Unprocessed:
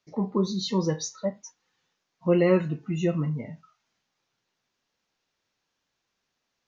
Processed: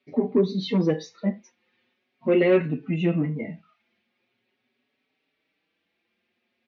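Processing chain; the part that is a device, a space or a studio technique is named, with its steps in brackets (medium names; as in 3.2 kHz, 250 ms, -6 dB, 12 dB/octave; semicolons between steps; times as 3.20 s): barber-pole flanger into a guitar amplifier (endless flanger 4.9 ms +0.42 Hz; saturation -22 dBFS, distortion -15 dB; cabinet simulation 110–3600 Hz, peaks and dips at 150 Hz -6 dB, 240 Hz +9 dB, 380 Hz +5 dB, 980 Hz -8 dB, 1.4 kHz -5 dB, 2.3 kHz +7 dB); trim +7.5 dB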